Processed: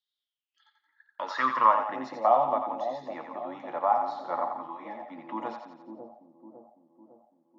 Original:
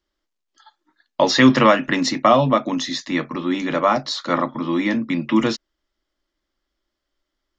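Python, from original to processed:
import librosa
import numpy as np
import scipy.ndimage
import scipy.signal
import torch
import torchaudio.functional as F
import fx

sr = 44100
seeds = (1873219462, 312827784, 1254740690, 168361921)

y = fx.echo_split(x, sr, split_hz=640.0, low_ms=554, high_ms=87, feedback_pct=52, wet_db=-6)
y = fx.filter_sweep_bandpass(y, sr, from_hz=3700.0, to_hz=800.0, start_s=0.16, end_s=1.92, q=7.3)
y = fx.ensemble(y, sr, at=(4.67, 5.18))
y = F.gain(torch.from_numpy(y), 2.5).numpy()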